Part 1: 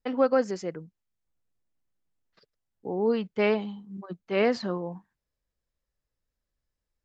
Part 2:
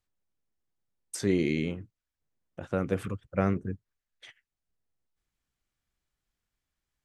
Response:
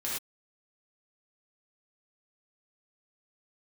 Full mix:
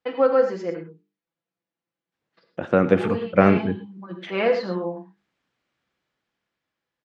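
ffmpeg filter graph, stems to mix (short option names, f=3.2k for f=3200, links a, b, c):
-filter_complex "[0:a]bandreject=f=50:t=h:w=6,bandreject=f=100:t=h:w=6,bandreject=f=150:t=h:w=6,bandreject=f=200:t=h:w=6,bandreject=f=250:t=h:w=6,bandreject=f=300:t=h:w=6,bandreject=f=350:t=h:w=6,bandreject=f=400:t=h:w=6,bandreject=f=450:t=h:w=6,aecho=1:1:6:0.67,volume=-1dB,asplit=2[a][b];[b]volume=-6dB[c];[1:a]dynaudnorm=f=490:g=7:m=13dB,volume=1.5dB,asplit=3[d][e][f];[d]atrim=end=1.01,asetpts=PTS-STARTPTS,afade=t=out:st=1.006:d=0.004:c=hsin[g];[e]atrim=start=1.01:end=2.12,asetpts=PTS-STARTPTS,volume=0[h];[f]atrim=start=2.12,asetpts=PTS-STARTPTS,afade=t=in:d=0.004:c=hsin[i];[g][h][i]concat=n=3:v=0:a=1,asplit=3[j][k][l];[k]volume=-15dB[m];[l]apad=whole_len=310920[n];[a][n]sidechaincompress=threshold=-25dB:ratio=8:attack=16:release=447[o];[2:a]atrim=start_sample=2205[p];[c][m]amix=inputs=2:normalize=0[q];[q][p]afir=irnorm=-1:irlink=0[r];[o][j][r]amix=inputs=3:normalize=0,highpass=180,lowpass=3.5k"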